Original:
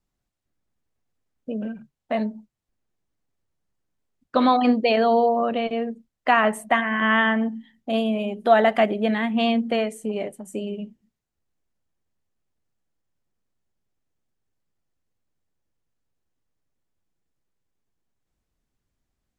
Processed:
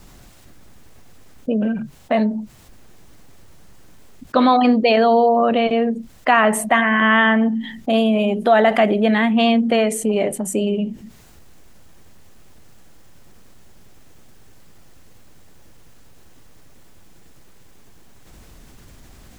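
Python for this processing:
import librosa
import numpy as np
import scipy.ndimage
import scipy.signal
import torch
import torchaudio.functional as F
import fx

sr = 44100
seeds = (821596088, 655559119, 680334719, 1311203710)

y = fx.env_flatten(x, sr, amount_pct=50)
y = y * 10.0 ** (1.0 / 20.0)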